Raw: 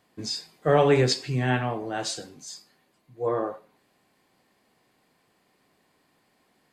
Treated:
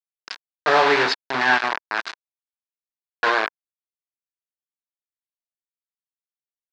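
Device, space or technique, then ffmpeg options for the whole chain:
hand-held game console: -af "acrusher=bits=3:mix=0:aa=0.000001,highpass=480,equalizer=f=520:t=q:w=4:g=-9,equalizer=f=980:t=q:w=4:g=5,equalizer=f=1600:t=q:w=4:g=7,equalizer=f=3100:t=q:w=4:g=-4,lowpass=f=4300:w=0.5412,lowpass=f=4300:w=1.3066,volume=2"

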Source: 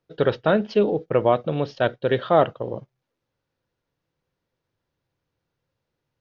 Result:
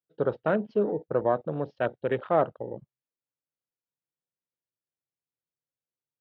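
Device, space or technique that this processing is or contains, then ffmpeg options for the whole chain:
over-cleaned archive recording: -af "highpass=120,lowpass=5000,afwtdn=0.0316,volume=0.501"

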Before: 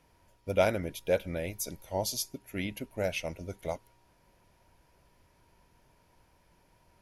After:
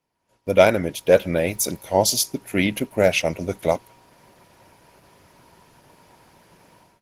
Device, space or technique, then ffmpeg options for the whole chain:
video call: -filter_complex "[0:a]asplit=3[s0][s1][s2];[s0]afade=t=out:st=0.83:d=0.02[s3];[s1]bandreject=f=2300:w=23,afade=t=in:st=0.83:d=0.02,afade=t=out:st=1.24:d=0.02[s4];[s2]afade=t=in:st=1.24:d=0.02[s5];[s3][s4][s5]amix=inputs=3:normalize=0,highpass=120,dynaudnorm=f=120:g=5:m=5.96,agate=range=0.282:threshold=0.00126:ratio=16:detection=peak" -ar 48000 -c:a libopus -b:a 16k

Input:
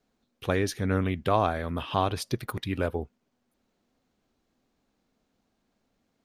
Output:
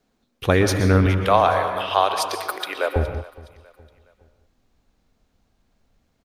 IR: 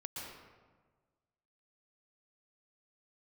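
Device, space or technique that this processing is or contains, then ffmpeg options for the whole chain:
keyed gated reverb: -filter_complex "[0:a]asettb=1/sr,asplit=3[s0][s1][s2];[s0]atrim=end=1.064[s3];[s1]atrim=start=1.06:end=2.96,asetpts=PTS-STARTPTS,afade=t=in:d=0.004:c=qsin,afade=t=out:st=1.896:d=0.004:c=qsin,highpass=f=470:w=0.5412,highpass=f=470:w=1.3066[s4];[s2]atrim=start=2.956[s5];[s3][s4]acrossfade=d=0.004:c1=hsin:c2=qsin[s6];[s6][s5]acrossfade=d=0.004:c1=qsin:c2=hsin,asplit=3[s7][s8][s9];[1:a]atrim=start_sample=2205[s10];[s8][s10]afir=irnorm=-1:irlink=0[s11];[s9]apad=whole_len=275302[s12];[s11][s12]sidechaingate=range=0.0224:threshold=0.002:ratio=16:detection=peak,volume=0.944[s13];[s7][s13]amix=inputs=2:normalize=0,asubboost=boost=4.5:cutoff=110,aecho=1:1:417|834|1251:0.0891|0.0383|0.0165,volume=1.88"

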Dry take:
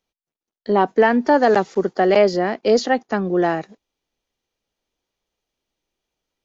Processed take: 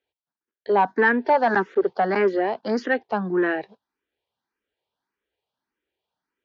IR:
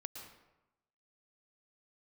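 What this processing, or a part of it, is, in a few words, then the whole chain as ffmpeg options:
barber-pole phaser into a guitar amplifier: -filter_complex "[0:a]asplit=2[s0][s1];[s1]afreqshift=1.7[s2];[s0][s2]amix=inputs=2:normalize=1,asoftclip=type=tanh:threshold=0.251,highpass=83,equalizer=f=160:t=q:w=4:g=-4,equalizer=f=410:t=q:w=4:g=4,equalizer=f=930:t=q:w=4:g=6,equalizer=f=1600:t=q:w=4:g=9,lowpass=f=4400:w=0.5412,lowpass=f=4400:w=1.3066,volume=0.841"

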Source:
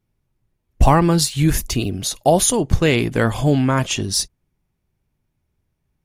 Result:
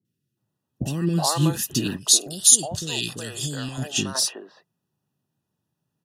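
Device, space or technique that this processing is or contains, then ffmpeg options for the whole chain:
PA system with an anti-feedback notch: -filter_complex "[0:a]highpass=f=130:w=0.5412,highpass=f=130:w=1.3066,asuperstop=centerf=2200:order=20:qfactor=4.8,alimiter=limit=0.299:level=0:latency=1:release=118,asettb=1/sr,asplit=3[s0][s1][s2];[s0]atrim=end=1.964[s3];[s1]atrim=start=1.96:end=3.78,asetpts=PTS-STARTPTS,afade=t=in:d=0.004:c=qsin,afade=t=out:st=1.816:d=0.004:c=qsin,equalizer=f=125:t=o:w=1:g=-5,equalizer=f=250:t=o:w=1:g=-10,equalizer=f=500:t=o:w=1:g=-7,equalizer=f=1000:t=o:w=1:g=-9,equalizer=f=2000:t=o:w=1:g=-4,equalizer=f=4000:t=o:w=1:g=7,equalizer=f=8000:t=o:w=1:g=11[s4];[s2]atrim=start=3.776[s5];[s3][s4]acrossfade=d=0.004:c1=hsin:c2=qsin[s6];[s6][s5]acrossfade=d=0.004:c1=qsin:c2=hsin,acrossover=split=430|1800[s7][s8][s9];[s9]adelay=50[s10];[s8]adelay=370[s11];[s7][s11][s10]amix=inputs=3:normalize=0,volume=0.891"

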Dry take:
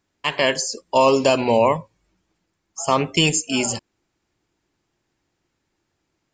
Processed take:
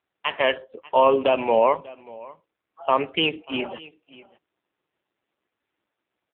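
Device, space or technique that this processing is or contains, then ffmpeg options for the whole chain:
satellite phone: -af "highpass=350,lowpass=3400,aecho=1:1:591:0.0891" -ar 8000 -c:a libopencore_amrnb -b:a 5900

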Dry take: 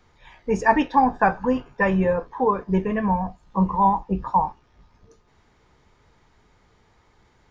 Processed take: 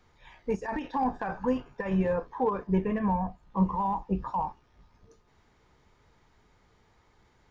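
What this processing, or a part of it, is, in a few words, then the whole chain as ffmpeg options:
de-esser from a sidechain: -filter_complex "[0:a]asettb=1/sr,asplit=3[s0][s1][s2];[s0]atrim=end=2.674[s3];[s1]atrim=start=2.67:end=3.63,asetpts=PTS-STARTPTS,afade=t=in:d=0.004:c=qsin,afade=t=out:st=0.956:d=0.004:c=qsin,bass=f=250:g=1,treble=f=4000:g=-8[s4];[s2]atrim=start=3.626[s5];[s3][s4]acrossfade=d=0.004:c1=hsin:c2=qsin[s6];[s6][s5]acrossfade=d=0.004:c1=qsin:c2=hsin,asplit=2[s7][s8];[s8]highpass=5100,apad=whole_len=331098[s9];[s7][s9]sidechaincompress=threshold=0.00282:ratio=8:attack=0.9:release=30,volume=0.596"

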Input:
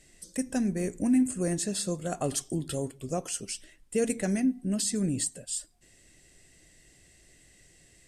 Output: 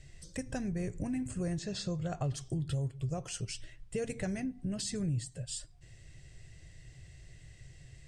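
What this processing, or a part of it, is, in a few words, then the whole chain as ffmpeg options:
jukebox: -filter_complex "[0:a]lowpass=5800,lowshelf=f=170:t=q:w=3:g=9.5,acompressor=threshold=0.02:ratio=3,asettb=1/sr,asplit=3[s0][s1][s2];[s0]atrim=end=1.594[s3];[s1]atrim=start=1.59:end=2.34,asetpts=PTS-STARTPTS,afade=t=in:d=0.004:c=qsin,afade=t=out:st=0.746:d=0.004:c=qsin,lowpass=f=6900:w=0.5412,lowpass=f=6900:w=1.3066[s4];[s2]atrim=start=2.336[s5];[s3][s4]acrossfade=d=0.004:c1=hsin:c2=qsin[s6];[s6][s5]acrossfade=d=0.004:c1=qsin:c2=hsin"

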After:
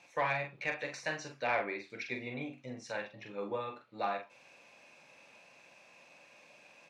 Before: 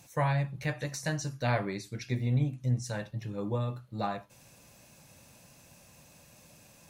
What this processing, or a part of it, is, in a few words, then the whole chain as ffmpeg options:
intercom: -filter_complex "[0:a]highpass=420,lowpass=3600,equalizer=f=2400:t=o:w=0.34:g=8.5,asoftclip=type=tanh:threshold=0.0944,asplit=2[s0][s1];[s1]adelay=44,volume=0.501[s2];[s0][s2]amix=inputs=2:normalize=0,asettb=1/sr,asplit=3[s3][s4][s5];[s3]atrim=end=1.444[s6];[s4]atrim=start=1.44:end=1.9,asetpts=PTS-STARTPTS,afade=t=in:d=0.004:c=qsin,afade=t=out:st=0.456:d=0.004:c=qsin,bass=f=250:g=-2,treble=f=4000:g=-11[s7];[s5]atrim=start=1.896[s8];[s6][s7]acrossfade=d=0.004:c1=hsin:c2=qsin[s9];[s9][s8]acrossfade=d=0.004:c1=qsin:c2=hsin"

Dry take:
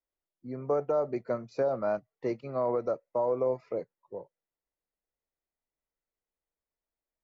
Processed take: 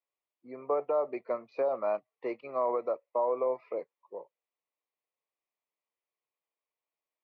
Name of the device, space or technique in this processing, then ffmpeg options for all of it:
phone earpiece: -af "highpass=410,equalizer=f=1100:t=q:w=4:g=7,equalizer=f=1500:t=q:w=4:g=-9,equalizer=f=2400:t=q:w=4:g=6,lowpass=f=3600:w=0.5412,lowpass=f=3600:w=1.3066"

